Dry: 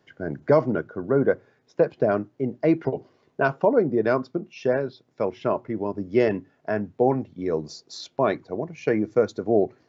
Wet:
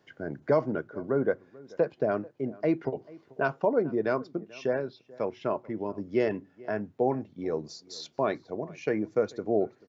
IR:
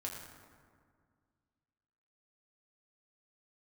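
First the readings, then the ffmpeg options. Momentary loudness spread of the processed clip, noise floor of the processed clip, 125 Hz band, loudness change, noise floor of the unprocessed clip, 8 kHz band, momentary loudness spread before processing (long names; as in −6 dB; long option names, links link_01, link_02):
11 LU, −64 dBFS, −7.5 dB, −6.0 dB, −67 dBFS, can't be measured, 12 LU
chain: -filter_complex "[0:a]lowshelf=frequency=140:gain=-4,asplit=2[link_01][link_02];[link_02]acompressor=threshold=-41dB:ratio=6,volume=-2dB[link_03];[link_01][link_03]amix=inputs=2:normalize=0,asplit=2[link_04][link_05];[link_05]adelay=437.3,volume=-22dB,highshelf=frequency=4000:gain=-9.84[link_06];[link_04][link_06]amix=inputs=2:normalize=0,volume=-6dB"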